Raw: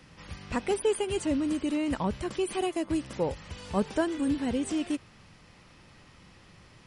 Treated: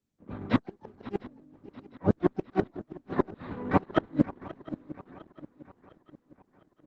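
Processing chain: Wiener smoothing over 15 samples; low-pass opened by the level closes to 300 Hz, open at -28 dBFS; gate -48 dBFS, range -37 dB; three-band isolator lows -22 dB, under 190 Hz, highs -24 dB, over 2100 Hz; harmoniser -12 st -6 dB, -3 st -5 dB, +12 st -12 dB; short-mantissa float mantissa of 8-bit; fifteen-band EQ 100 Hz +6 dB, 250 Hz +9 dB, 1600 Hz +4 dB, 4000 Hz +9 dB; flipped gate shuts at -16 dBFS, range -41 dB; swung echo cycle 0.705 s, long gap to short 3:1, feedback 48%, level -17 dB; gain +7.5 dB; Opus 10 kbps 48000 Hz

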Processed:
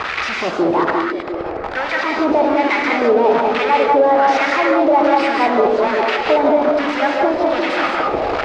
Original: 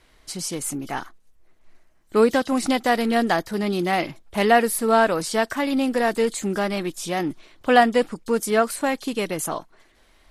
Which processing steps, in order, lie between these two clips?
delta modulation 64 kbps, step -18 dBFS; LPF 4200 Hz 24 dB/oct; low shelf 260 Hz +8.5 dB; compressor, threshold -15 dBFS, peak gain reduction 7.5 dB; sample leveller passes 2; varispeed +22%; wah 1.2 Hz 480–2100 Hz, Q 2.4; delay with a stepping band-pass 0.35 s, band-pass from 300 Hz, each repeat 0.7 oct, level -4 dB; non-linear reverb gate 0.23 s rising, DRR 0 dB; maximiser +9 dB; gain -3.5 dB

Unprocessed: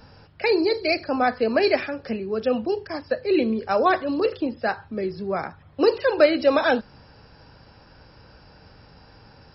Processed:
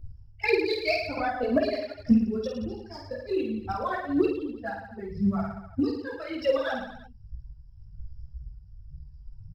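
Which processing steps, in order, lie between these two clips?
per-bin expansion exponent 2; low shelf 440 Hz +10 dB; harmonic-percussive split percussive +9 dB; compressor 6:1, threshold -25 dBFS, peak gain reduction 19 dB; chorus voices 6, 0.44 Hz, delay 17 ms, depth 4.2 ms; random-step tremolo; phaser 1.9 Hz, delay 2.8 ms, feedback 66%; reverse bouncing-ball echo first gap 50 ms, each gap 1.15×, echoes 5; 1.17–1.73 three-band squash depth 70%

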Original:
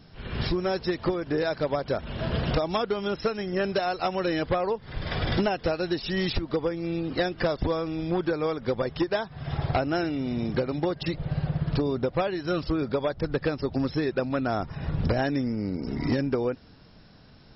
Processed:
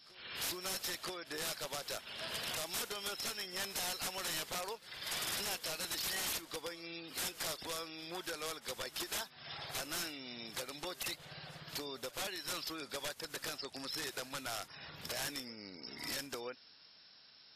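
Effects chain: differentiator; wrapped overs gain 37.5 dB; on a send: reverse echo 0.976 s -21 dB; on the sum: gain +6 dB; WMA 64 kbps 32000 Hz

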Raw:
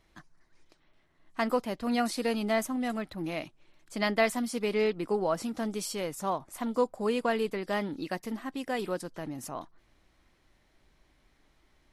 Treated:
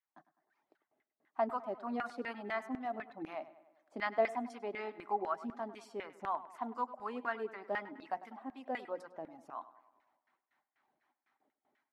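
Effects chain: gate with hold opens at -55 dBFS; HPF 120 Hz; de-hum 179.9 Hz, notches 35; reverb removal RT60 0.61 s; thirty-one-band EQ 250 Hz +7 dB, 500 Hz -6 dB, 800 Hz +6 dB; LFO band-pass saw down 4 Hz 410–1900 Hz; on a send: tape echo 0.1 s, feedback 58%, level -15 dB, low-pass 3500 Hz

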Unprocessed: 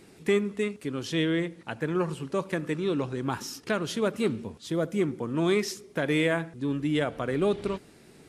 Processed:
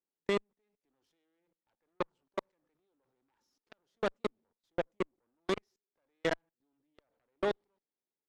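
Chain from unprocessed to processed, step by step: speaker cabinet 230–6700 Hz, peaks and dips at 540 Hz +5 dB, 880 Hz +8 dB, 2600 Hz -5 dB; level quantiser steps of 23 dB; added harmonics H 2 -13 dB, 3 -35 dB, 4 -35 dB, 7 -17 dB, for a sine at -13 dBFS; gain -4.5 dB

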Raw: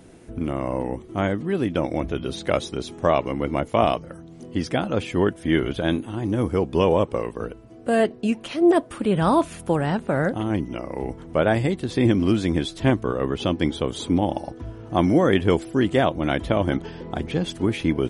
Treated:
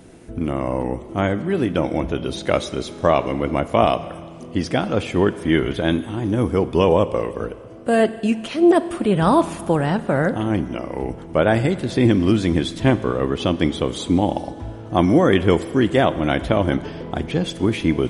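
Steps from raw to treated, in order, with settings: Schroeder reverb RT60 2 s, combs from 32 ms, DRR 14 dB; gain +3 dB

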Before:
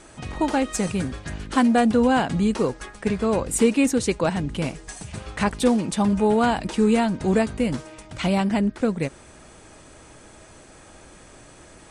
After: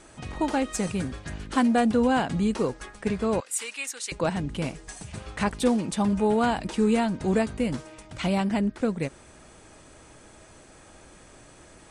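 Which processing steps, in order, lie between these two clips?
3.4–4.12 HPF 1500 Hz 12 dB/oct; gain -3.5 dB

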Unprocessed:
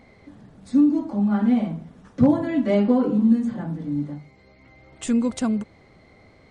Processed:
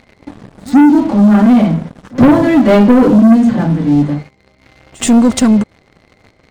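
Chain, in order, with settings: sample leveller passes 3; reverse echo 76 ms -22.5 dB; gain +5.5 dB

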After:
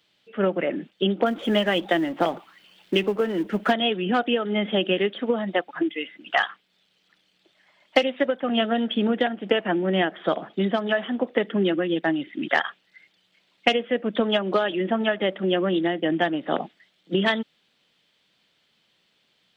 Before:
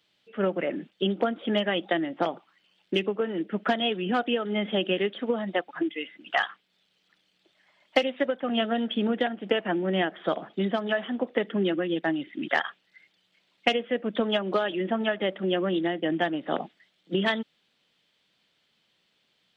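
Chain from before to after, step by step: 1.26–3.72 G.711 law mismatch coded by mu; gain +3.5 dB

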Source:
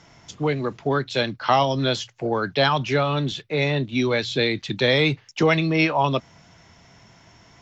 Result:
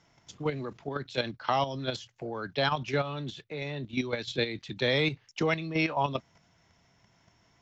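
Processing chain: level quantiser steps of 10 dB; gain -5.5 dB

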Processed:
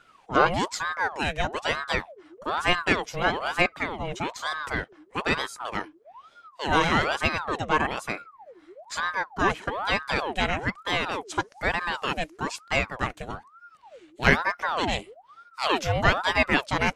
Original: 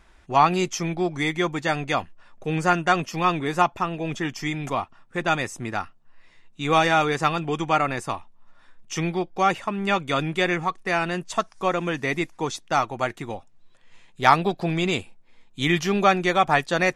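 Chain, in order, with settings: ring modulator with a swept carrier 860 Hz, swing 65%, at 1.1 Hz

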